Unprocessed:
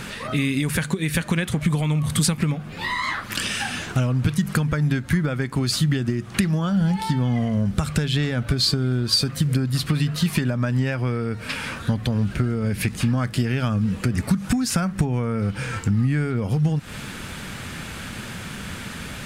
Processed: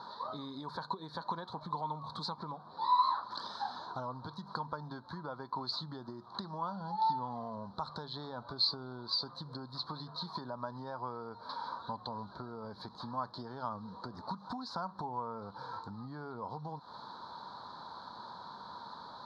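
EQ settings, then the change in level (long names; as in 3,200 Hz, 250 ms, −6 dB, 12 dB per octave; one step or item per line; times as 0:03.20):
pair of resonant band-passes 2,000 Hz, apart 2.1 octaves
Butterworth band-reject 2,700 Hz, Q 1.3
high-frequency loss of the air 320 metres
+6.0 dB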